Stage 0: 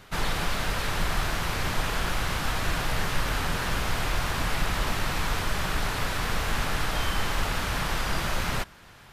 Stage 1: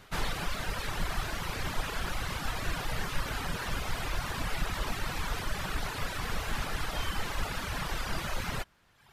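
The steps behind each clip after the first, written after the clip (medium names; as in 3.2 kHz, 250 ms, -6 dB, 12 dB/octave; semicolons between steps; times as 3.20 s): reverb removal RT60 1.1 s; trim -3.5 dB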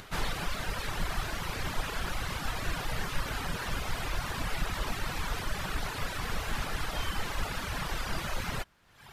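upward compressor, threshold -41 dBFS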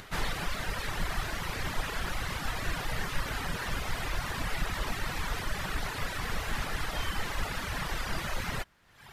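peaking EQ 1.9 kHz +3.5 dB 0.28 oct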